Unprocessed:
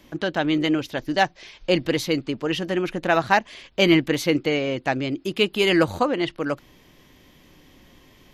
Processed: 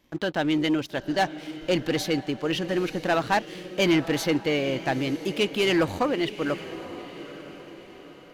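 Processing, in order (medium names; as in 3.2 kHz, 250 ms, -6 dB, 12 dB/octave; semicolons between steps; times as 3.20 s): waveshaping leveller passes 2; vibrato 1.4 Hz 6.4 cents; echo that smears into a reverb 908 ms, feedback 43%, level -13.5 dB; trim -9 dB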